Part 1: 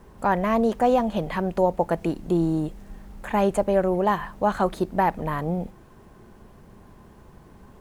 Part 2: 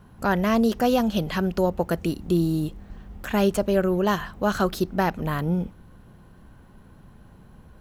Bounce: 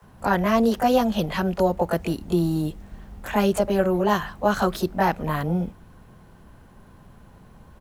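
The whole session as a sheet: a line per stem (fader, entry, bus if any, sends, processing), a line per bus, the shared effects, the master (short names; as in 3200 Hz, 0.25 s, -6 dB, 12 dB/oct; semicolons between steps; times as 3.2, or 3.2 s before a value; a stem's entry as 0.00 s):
-3.0 dB, 0.00 s, no send, HPF 510 Hz 24 dB/oct
0.0 dB, 20 ms, no send, dry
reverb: off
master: dry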